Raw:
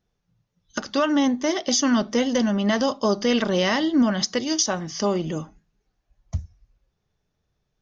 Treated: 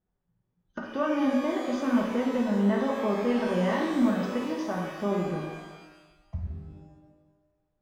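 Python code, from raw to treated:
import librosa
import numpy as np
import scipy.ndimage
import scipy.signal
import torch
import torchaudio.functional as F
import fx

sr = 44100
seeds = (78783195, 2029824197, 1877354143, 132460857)

y = scipy.signal.sosfilt(scipy.signal.butter(2, 1500.0, 'lowpass', fs=sr, output='sos'), x)
y = fx.rev_shimmer(y, sr, seeds[0], rt60_s=1.2, semitones=12, shimmer_db=-8, drr_db=-1.5)
y = F.gain(torch.from_numpy(y), -8.0).numpy()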